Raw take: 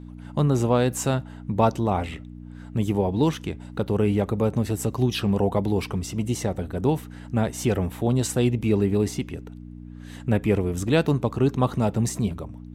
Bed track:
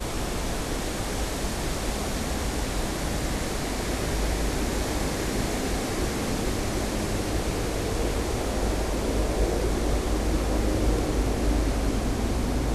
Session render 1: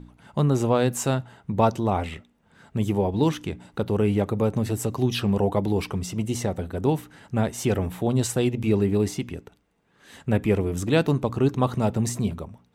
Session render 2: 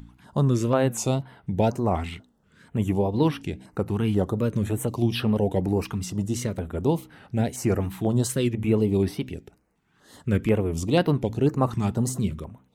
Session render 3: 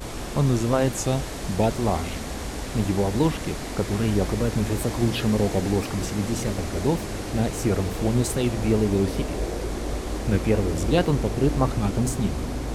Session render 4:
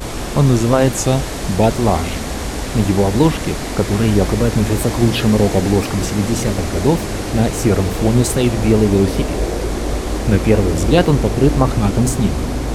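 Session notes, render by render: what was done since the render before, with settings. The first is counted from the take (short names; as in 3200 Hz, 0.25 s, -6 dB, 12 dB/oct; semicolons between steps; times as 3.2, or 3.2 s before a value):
de-hum 60 Hz, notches 5
wow and flutter 130 cents; stepped notch 4.1 Hz 540–7000 Hz
add bed track -3.5 dB
gain +8.5 dB; limiter -1 dBFS, peak gain reduction 2.5 dB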